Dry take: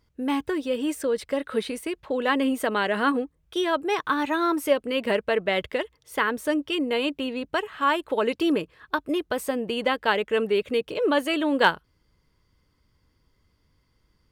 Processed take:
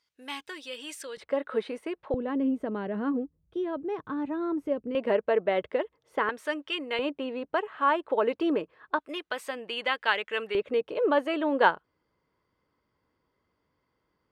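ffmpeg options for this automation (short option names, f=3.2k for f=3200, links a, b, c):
-af "asetnsamples=n=441:p=0,asendcmd='1.17 bandpass f 760;2.14 bandpass f 150;4.95 bandpass f 560;6.29 bandpass f 1700;6.99 bandpass f 710;8.99 bandpass f 2100;10.55 bandpass f 730',bandpass=f=4.2k:t=q:w=0.68:csg=0"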